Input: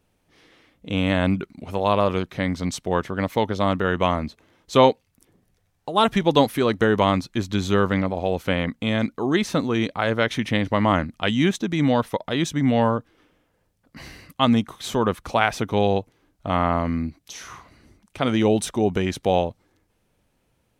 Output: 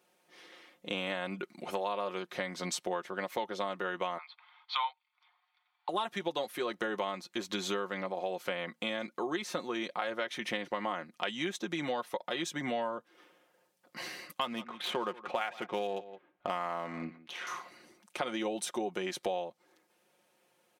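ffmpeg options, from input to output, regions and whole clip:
ffmpeg -i in.wav -filter_complex "[0:a]asettb=1/sr,asplit=3[link_01][link_02][link_03];[link_01]atrim=end=4.184[link_04];[link_02]atrim=start=4.18:end=5.89,asetpts=PTS-STARTPTS,afade=type=in:duration=0.004:curve=qsin,afade=type=out:start_time=1.706:duration=0.004:curve=qsin,asuperpass=centerf=1800:order=12:qfactor=0.53,aecho=1:1:0.9:0.48,atrim=end_sample=75411[link_05];[link_03]atrim=start=5.886[link_06];[link_04][link_05]acrossfade=duration=0.004:curve1=hsin:curve2=qsin[link_07];[link_07][link_06]acrossfade=duration=0.004:curve1=qsin:curve2=hsin,asettb=1/sr,asplit=3[link_08][link_09][link_10];[link_08]atrim=end=14.414[link_11];[link_09]atrim=start=14.41:end=17.47,asetpts=PTS-STARTPTS,afade=type=in:duration=0.004:curve=qsin,afade=type=out:start_time=3.056:duration=0.004:curve=qsin,highshelf=frequency=4000:width_type=q:width=1.5:gain=-8.5,aecho=1:1:169:0.1,atrim=end_sample=134946,adynamicsmooth=sensitivity=8:basefreq=2600[link_12];[link_10]atrim=start=17.466[link_13];[link_11][link_12]acrossfade=duration=0.004:curve1=hsin:curve2=qsin[link_14];[link_14][link_13]acrossfade=duration=0.004:curve1=qsin:curve2=hsin,highpass=390,aecho=1:1:5.6:0.59,acompressor=threshold=-32dB:ratio=6" out.wav

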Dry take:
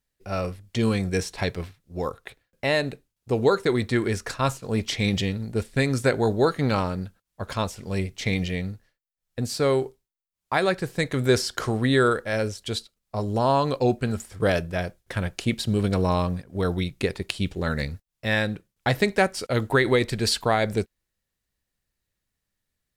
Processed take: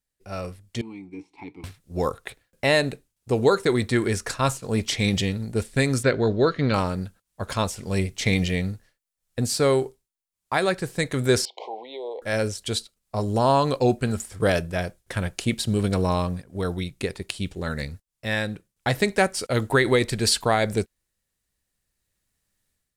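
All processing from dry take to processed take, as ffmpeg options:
ffmpeg -i in.wav -filter_complex "[0:a]asettb=1/sr,asplit=3[link_01][link_02][link_03];[link_01]atrim=end=0.814[link_04];[link_02]atrim=start=0.81:end=1.64,asetpts=PTS-STARTPTS,afade=type=in:duration=0.004:curve=qsin,afade=type=out:start_time=0.826:duration=0.004:curve=qsin,deesser=0.85,volume=17.5dB,asoftclip=hard,volume=-17.5dB,asplit=3[link_05][link_06][link_07];[link_05]bandpass=frequency=300:width_type=q:width=8,volume=0dB[link_08];[link_06]bandpass=frequency=870:width_type=q:width=8,volume=-6dB[link_09];[link_07]bandpass=frequency=2240:width_type=q:width=8,volume=-9dB[link_10];[link_08][link_09][link_10]amix=inputs=3:normalize=0[link_11];[link_03]atrim=start=1.636[link_12];[link_04][link_11]acrossfade=duration=0.004:curve1=hsin:curve2=qsin[link_13];[link_13][link_12]acrossfade=duration=0.004:curve1=qsin:curve2=hsin,asettb=1/sr,asplit=3[link_14][link_15][link_16];[link_14]atrim=end=6.034[link_17];[link_15]atrim=start=6.03:end=6.74,asetpts=PTS-STARTPTS,afade=type=in:duration=0.004:curve=qsin,afade=type=out:start_time=0.706:duration=0.004:curve=qsin,lowpass=frequency=4800:width=0.5412,lowpass=frequency=4800:width=1.3066,equalizer=frequency=820:width_type=o:width=0.27:gain=-11.5[link_18];[link_16]atrim=start=6.736[link_19];[link_17][link_18]acrossfade=duration=0.004:curve1=hsin:curve2=qsin[link_20];[link_20][link_19]acrossfade=duration=0.004:curve1=qsin:curve2=hsin,asettb=1/sr,asplit=3[link_21][link_22][link_23];[link_21]atrim=end=11.454[link_24];[link_22]atrim=start=11.45:end=12.22,asetpts=PTS-STARTPTS,afade=type=in:duration=0.004:curve=qsin,afade=type=out:start_time=0.766:duration=0.004:curve=qsin,acompressor=threshold=-23dB:ratio=6:attack=3.2:release=140:knee=1:detection=peak,asuperstop=centerf=1500:order=12:qfactor=1.2,highpass=frequency=470:width=0.5412,highpass=frequency=470:width=1.3066,equalizer=frequency=820:width_type=q:width=4:gain=8,equalizer=frequency=1300:width_type=q:width=4:gain=-6,equalizer=frequency=1800:width_type=q:width=4:gain=9,equalizer=frequency=2600:width_type=q:width=4:gain=-6,lowpass=frequency=3200:width=0.5412,lowpass=frequency=3200:width=1.3066[link_25];[link_23]atrim=start=12.216[link_26];[link_24][link_25]acrossfade=duration=0.004:curve1=hsin:curve2=qsin[link_27];[link_27][link_26]acrossfade=duration=0.004:curve1=qsin:curve2=hsin,equalizer=frequency=9000:width_type=o:width=1:gain=6,dynaudnorm=framelen=840:gausssize=3:maxgain=11.5dB,volume=-5.5dB" out.wav

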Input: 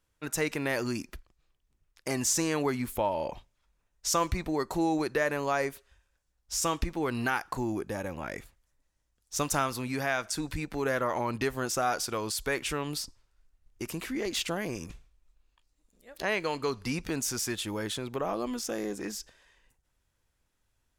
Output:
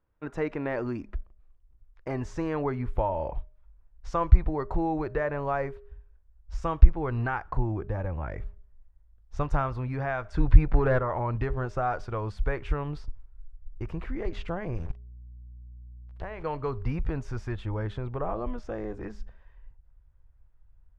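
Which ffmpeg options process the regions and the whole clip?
ffmpeg -i in.wav -filter_complex "[0:a]asettb=1/sr,asplit=3[link_01][link_02][link_03];[link_01]atrim=end=10.344[link_04];[link_02]atrim=start=10.34:end=10.99,asetpts=PTS-STARTPTS,afade=type=in:duration=0.004:curve=qsin,afade=type=out:start_time=0.646:duration=0.004:curve=qsin,highshelf=frequency=8600:gain=-6,aeval=exprs='0.126*sin(PI/2*1.41*val(0)/0.126)':channel_layout=same[link_05];[link_03]atrim=start=10.986[link_06];[link_04][link_05]acrossfade=duration=0.004:curve1=hsin:curve2=qsin[link_07];[link_07][link_06]acrossfade=duration=0.004:curve1=qsin:curve2=hsin,asettb=1/sr,asplit=3[link_08][link_09][link_10];[link_08]atrim=end=14.774[link_11];[link_09]atrim=start=14.77:end=16.43,asetpts=PTS-STARTPTS,afade=type=in:duration=0.004:curve=qsin,afade=type=out:start_time=1.656:duration=0.004:curve=qsin,aeval=exprs='val(0)*gte(abs(val(0)),0.00944)':channel_layout=same,acompressor=threshold=-33dB:ratio=4:attack=3.2:release=140:knee=1:detection=peak,aeval=exprs='val(0)+0.001*(sin(2*PI*60*n/s)+sin(2*PI*2*60*n/s)/2+sin(2*PI*3*60*n/s)/3+sin(2*PI*4*60*n/s)/4+sin(2*PI*5*60*n/s)/5)':channel_layout=same[link_12];[link_10]atrim=start=16.426[link_13];[link_11][link_12]acrossfade=duration=0.004:curve1=hsin:curve2=qsin[link_14];[link_14][link_13]acrossfade=duration=0.004:curve1=qsin:curve2=hsin,lowpass=1300,bandreject=frequency=204:width_type=h:width=4,bandreject=frequency=408:width_type=h:width=4,bandreject=frequency=612:width_type=h:width=4,asubboost=boost=11.5:cutoff=71,volume=2dB" out.wav

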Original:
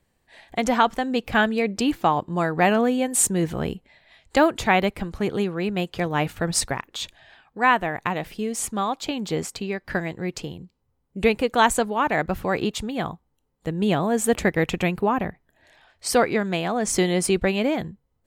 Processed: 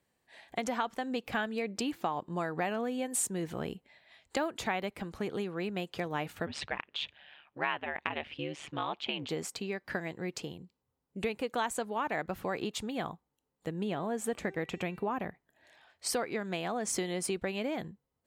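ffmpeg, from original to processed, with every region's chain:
ffmpeg -i in.wav -filter_complex "[0:a]asettb=1/sr,asplit=3[link_01][link_02][link_03];[link_01]atrim=end=6.464[link_04];[link_02]atrim=start=6.46:end=9.29,asetpts=PTS-STARTPTS,afade=type=in:duration=0.004:curve=qsin,afade=type=out:start_time=2.826:duration=0.004:curve=qsin,lowpass=frequency=2900:width_type=q:width=3.3,aeval=exprs='val(0)*sin(2*PI*73*n/s)':channel_layout=same[link_05];[link_03]atrim=start=9.286[link_06];[link_04][link_05]acrossfade=duration=0.004:curve1=hsin:curve2=qsin[link_07];[link_07][link_06]acrossfade=duration=0.004:curve1=qsin:curve2=hsin,asettb=1/sr,asplit=3[link_08][link_09][link_10];[link_08]atrim=end=13.834[link_11];[link_09]atrim=start=13.83:end=15.11,asetpts=PTS-STARTPTS,afade=type=in:duration=0.004:curve=qsin,afade=type=out:start_time=1.276:duration=0.004:curve=qsin,highshelf=frequency=3900:gain=-6,bandreject=frequency=388.6:width_type=h:width=4,bandreject=frequency=777.2:width_type=h:width=4,bandreject=frequency=1165.8:width_type=h:width=4,bandreject=frequency=1554.4:width_type=h:width=4,bandreject=frequency=1943:width_type=h:width=4,bandreject=frequency=2331.6:width_type=h:width=4,bandreject=frequency=2720.2:width_type=h:width=4,bandreject=frequency=3108.8:width_type=h:width=4,bandreject=frequency=3497.4:width_type=h:width=4,bandreject=frequency=3886:width_type=h:width=4,bandreject=frequency=4274.6:width_type=h:width=4,bandreject=frequency=4663.2:width_type=h:width=4,bandreject=frequency=5051.8:width_type=h:width=4,bandreject=frequency=5440.4:width_type=h:width=4,bandreject=frequency=5829:width_type=h:width=4,bandreject=frequency=6217.6:width_type=h:width=4,bandreject=frequency=6606.2:width_type=h:width=4,bandreject=frequency=6994.8:width_type=h:width=4,bandreject=frequency=7383.4:width_type=h:width=4,bandreject=frequency=7772:width_type=h:width=4,bandreject=frequency=8160.6:width_type=h:width=4,bandreject=frequency=8549.2:width_type=h:width=4[link_12];[link_10]atrim=start=15.106[link_13];[link_11][link_12]acrossfade=duration=0.004:curve1=hsin:curve2=qsin[link_14];[link_14][link_13]acrossfade=duration=0.004:curve1=qsin:curve2=hsin,acompressor=threshold=-24dB:ratio=4,highpass=frequency=190:poles=1,volume=-5.5dB" out.wav

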